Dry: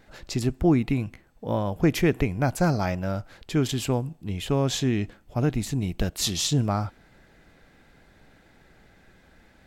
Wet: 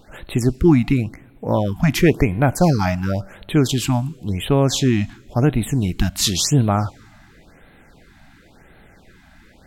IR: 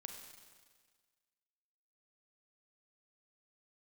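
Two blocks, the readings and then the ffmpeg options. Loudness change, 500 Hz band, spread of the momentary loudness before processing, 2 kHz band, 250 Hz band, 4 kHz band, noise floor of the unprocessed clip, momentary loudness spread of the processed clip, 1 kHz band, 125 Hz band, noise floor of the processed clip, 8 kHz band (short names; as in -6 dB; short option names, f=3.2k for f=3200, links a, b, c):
+7.0 dB, +6.5 dB, 10 LU, +6.5 dB, +7.0 dB, +6.5 dB, -58 dBFS, 9 LU, +6.5 dB, +7.5 dB, -50 dBFS, +7.0 dB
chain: -filter_complex "[0:a]asplit=2[a][b];[1:a]atrim=start_sample=2205[c];[b][c]afir=irnorm=-1:irlink=0,volume=-13.5dB[d];[a][d]amix=inputs=2:normalize=0,afftfilt=real='re*(1-between(b*sr/1024,410*pow(6200/410,0.5+0.5*sin(2*PI*0.94*pts/sr))/1.41,410*pow(6200/410,0.5+0.5*sin(2*PI*0.94*pts/sr))*1.41))':imag='im*(1-between(b*sr/1024,410*pow(6200/410,0.5+0.5*sin(2*PI*0.94*pts/sr))/1.41,410*pow(6200/410,0.5+0.5*sin(2*PI*0.94*pts/sr))*1.41))':win_size=1024:overlap=0.75,volume=6.5dB"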